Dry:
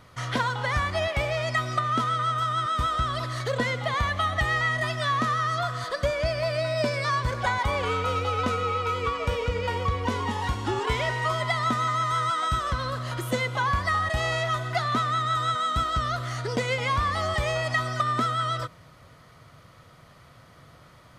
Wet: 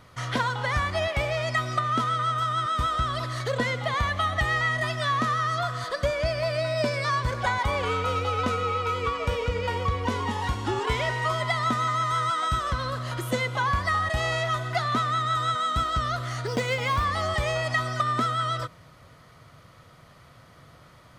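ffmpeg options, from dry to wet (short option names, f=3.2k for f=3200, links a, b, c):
-filter_complex "[0:a]asettb=1/sr,asplit=3[a][b][c];[a]atrim=end=16.464[d];[b]atrim=start=16.46:end=17.05,asetpts=PTS-STARTPTS,afade=t=in:d=0.004:c=qsin,afade=t=out:st=0.586:d=0.004:c=qsin,acrusher=bits=8:mode=log:mix=0:aa=0.000001[e];[c]atrim=start=17.046[f];[d][e]acrossfade=d=0.004:c1=hsin:c2=qsin[g];[g][f]acrossfade=d=0.004:c1=qsin:c2=hsin"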